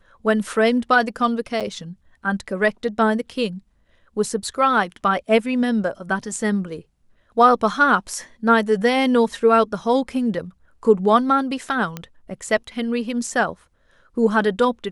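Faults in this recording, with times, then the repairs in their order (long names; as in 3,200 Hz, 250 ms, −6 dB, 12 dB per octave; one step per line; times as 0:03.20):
0:01.60–0:01.61: drop-out 7.1 ms
0:11.97: click −14 dBFS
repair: click removal
repair the gap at 0:01.60, 7.1 ms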